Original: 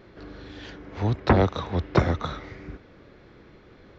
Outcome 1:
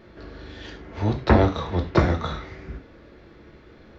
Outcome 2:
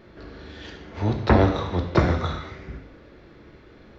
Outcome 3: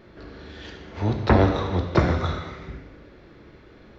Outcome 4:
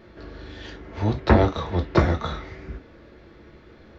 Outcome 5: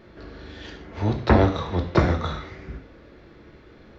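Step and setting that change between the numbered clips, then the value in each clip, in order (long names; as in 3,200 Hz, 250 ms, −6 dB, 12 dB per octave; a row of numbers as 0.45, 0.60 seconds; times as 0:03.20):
reverb whose tail is shaped and stops, gate: 130, 290, 430, 80, 190 milliseconds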